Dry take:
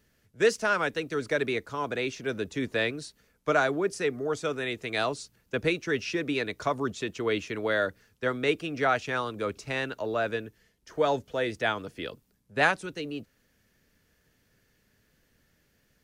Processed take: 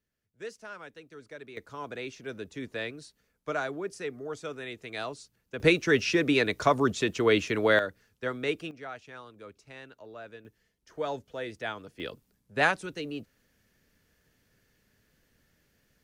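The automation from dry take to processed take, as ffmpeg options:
-af "asetnsamples=n=441:p=0,asendcmd='1.57 volume volume -7.5dB;5.6 volume volume 5dB;7.79 volume volume -4dB;8.71 volume volume -16dB;10.45 volume volume -7.5dB;12 volume volume -1dB',volume=0.133"

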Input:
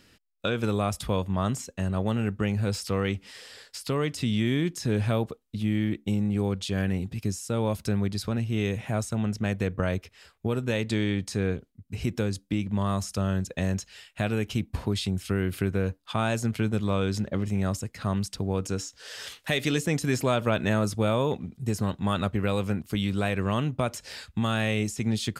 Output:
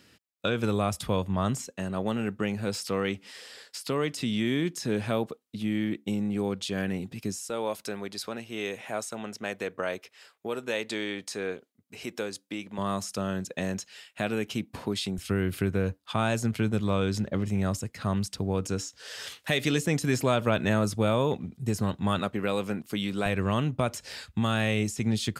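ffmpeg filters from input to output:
-af "asetnsamples=n=441:p=0,asendcmd='1.67 highpass f 180;7.5 highpass f 400;12.78 highpass f 190;15.18 highpass f 76;22.19 highpass f 200;23.26 highpass f 53',highpass=84"

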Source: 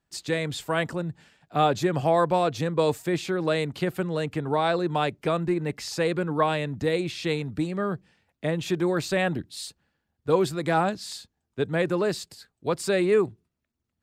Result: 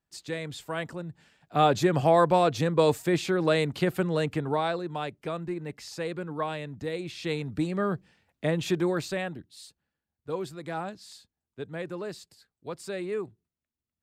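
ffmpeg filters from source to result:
-af "volume=2.82,afade=t=in:st=1.1:d=0.65:silence=0.398107,afade=t=out:st=4.25:d=0.58:silence=0.354813,afade=t=in:st=6.99:d=0.76:silence=0.398107,afade=t=out:st=8.69:d=0.65:silence=0.281838"

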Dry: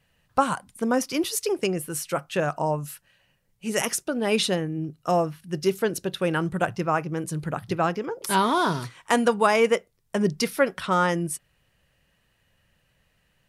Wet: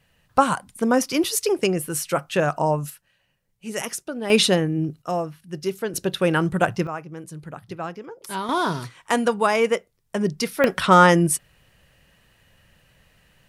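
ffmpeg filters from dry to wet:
-af "asetnsamples=n=441:p=0,asendcmd='2.9 volume volume -3.5dB;4.3 volume volume 6dB;5.02 volume volume -3dB;5.94 volume volume 4.5dB;6.87 volume volume -7.5dB;8.49 volume volume 0dB;10.64 volume volume 9dB',volume=1.58"

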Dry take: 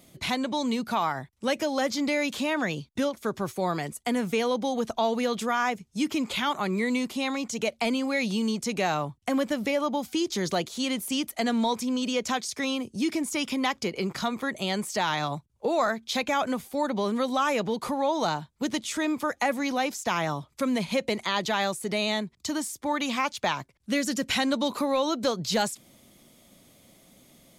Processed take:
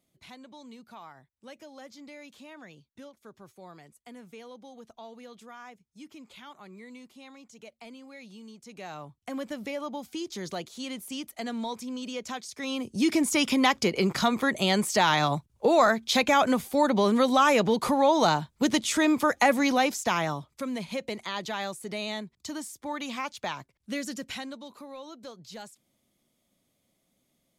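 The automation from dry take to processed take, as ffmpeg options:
-af "volume=1.68,afade=t=in:st=8.61:d=0.89:silence=0.251189,afade=t=in:st=12.57:d=0.62:silence=0.237137,afade=t=out:st=19.64:d=1:silence=0.281838,afade=t=out:st=24.03:d=0.58:silence=0.281838"

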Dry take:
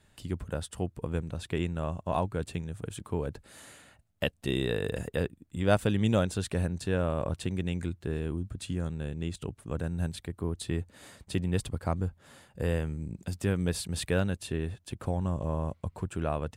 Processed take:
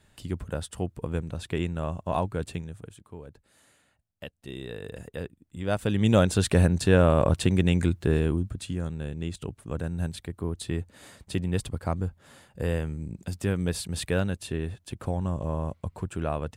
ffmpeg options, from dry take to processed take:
-af "volume=13.3,afade=t=out:st=2.49:d=0.49:silence=0.223872,afade=t=in:st=4.34:d=1.42:silence=0.398107,afade=t=in:st=5.76:d=0.75:silence=0.237137,afade=t=out:st=8.15:d=0.5:silence=0.398107"

